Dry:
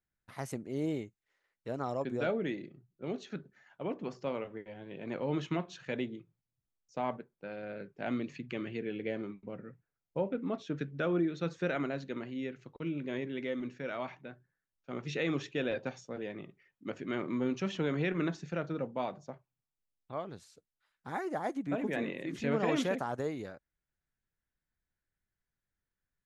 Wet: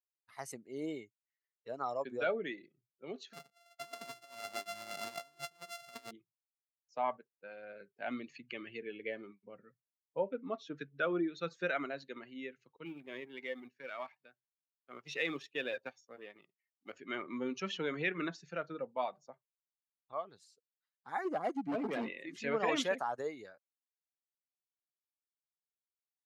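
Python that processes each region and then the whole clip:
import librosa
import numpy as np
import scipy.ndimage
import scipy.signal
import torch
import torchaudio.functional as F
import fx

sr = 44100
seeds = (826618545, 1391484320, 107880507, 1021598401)

y = fx.chain(x, sr, fx.sample_sort(block=64),
    fx.over_compress(threshold_db=-41.0, ratio=-0.5), at=(3.33, 6.11))
y = fx.chain(y, sr, fx.law_mismatch(coded='A'),
    fx.highpass(hz=57.0, slope=12), at=(12.85, 16.93))
y = fx.chain(y, sr, fx.low_shelf(hz=470.0, db=9.5),
    fx.notch_comb(f0_hz=880.0),
    fx.clip_hard(threshold_db=-28.0), at=(21.25, 22.08))
y = fx.bin_expand(y, sr, power=1.5)
y = fx.weighting(y, sr, curve='A')
y = y * 10.0 ** (4.0 / 20.0)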